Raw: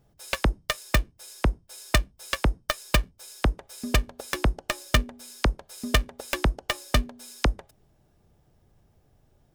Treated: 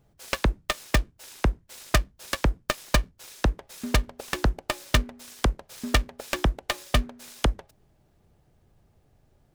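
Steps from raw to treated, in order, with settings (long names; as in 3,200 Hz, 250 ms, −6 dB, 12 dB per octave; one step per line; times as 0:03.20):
short delay modulated by noise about 1,300 Hz, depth 0.047 ms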